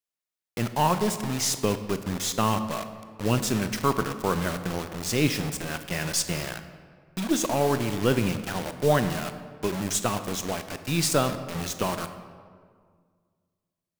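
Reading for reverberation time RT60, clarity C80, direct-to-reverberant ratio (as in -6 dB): 1.9 s, 11.5 dB, 9.5 dB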